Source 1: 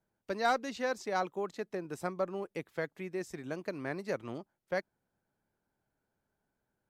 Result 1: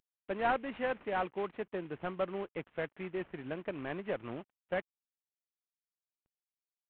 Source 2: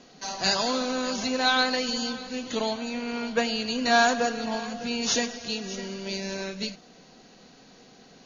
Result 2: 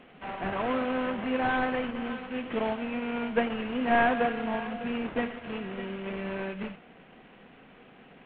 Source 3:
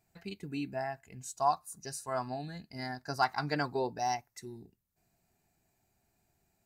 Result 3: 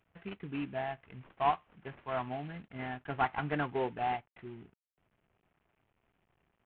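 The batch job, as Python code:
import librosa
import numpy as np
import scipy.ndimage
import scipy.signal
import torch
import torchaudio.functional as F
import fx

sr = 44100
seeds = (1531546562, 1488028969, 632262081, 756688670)

y = fx.cvsd(x, sr, bps=16000)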